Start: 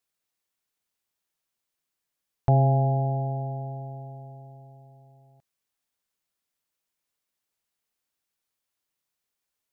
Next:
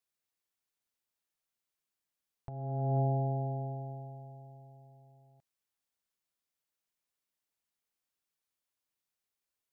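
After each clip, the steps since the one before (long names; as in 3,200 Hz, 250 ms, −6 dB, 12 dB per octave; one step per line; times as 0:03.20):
compressor whose output falls as the input rises −24 dBFS, ratio −0.5
dynamic equaliser 300 Hz, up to +6 dB, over −39 dBFS, Q 0.73
level −8.5 dB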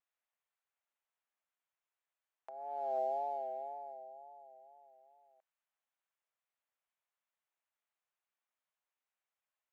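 adaptive Wiener filter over 9 samples
high-pass filter 580 Hz 24 dB per octave
tape wow and flutter 76 cents
level +2.5 dB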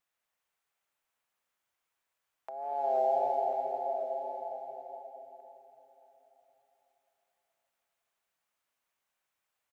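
single-tap delay 1,042 ms −12 dB
convolution reverb RT60 3.5 s, pre-delay 140 ms, DRR 3 dB
level +6.5 dB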